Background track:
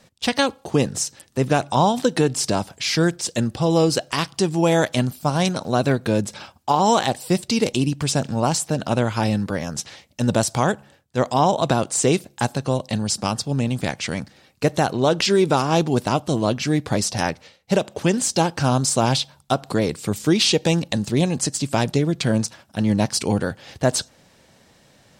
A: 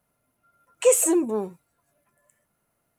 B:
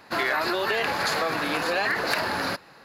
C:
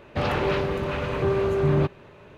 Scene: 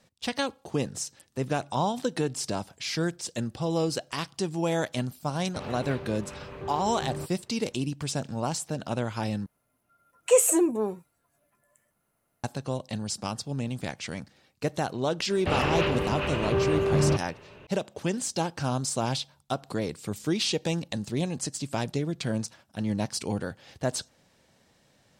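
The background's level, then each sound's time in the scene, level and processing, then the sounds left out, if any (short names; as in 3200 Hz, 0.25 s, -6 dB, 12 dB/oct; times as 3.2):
background track -9.5 dB
5.39 add C -14.5 dB
9.46 replace with A -1.5 dB
15.3 add C -2 dB + bell 2800 Hz +8 dB 0.28 oct
not used: B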